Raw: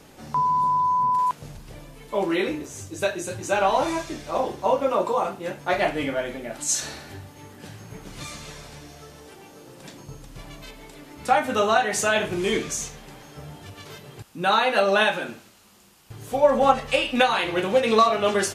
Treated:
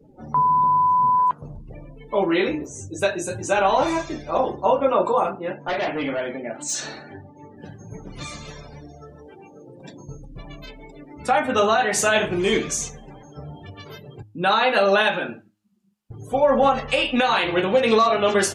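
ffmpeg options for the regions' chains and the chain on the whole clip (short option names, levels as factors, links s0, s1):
-filter_complex "[0:a]asettb=1/sr,asplit=3[s0][s1][s2];[s0]atrim=end=5.384[s3];[s1]atrim=start=5.38:end=7.57,asetpts=PTS-STARTPTS,afade=t=in:d=0.004:c=qsin,afade=t=out:st=2.186:d=0.004:c=qsin,highpass=140,equalizer=f=12000:t=o:w=1.3:g=-9.5,volume=17.8,asoftclip=hard,volume=0.0562[s4];[s2]atrim=start=7.566[s5];[s3][s4]acrossfade=d=0.004:c1=hsin:c2=qsin[s6];[s6][s5]acrossfade=d=0.004:c1=qsin:c2=hsin,afftdn=nr=33:nf=-43,bandreject=f=104.8:t=h:w=4,bandreject=f=209.6:t=h:w=4,bandreject=f=314.4:t=h:w=4,alimiter=level_in=3.55:limit=0.891:release=50:level=0:latency=1,volume=0.422"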